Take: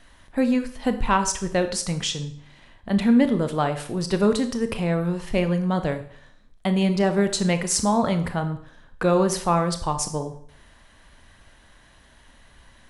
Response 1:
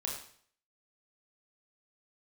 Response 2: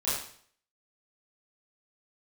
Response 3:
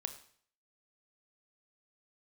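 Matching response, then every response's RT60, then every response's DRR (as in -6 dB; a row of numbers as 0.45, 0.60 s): 3; 0.55, 0.55, 0.55 s; -2.0, -12.0, 8.0 dB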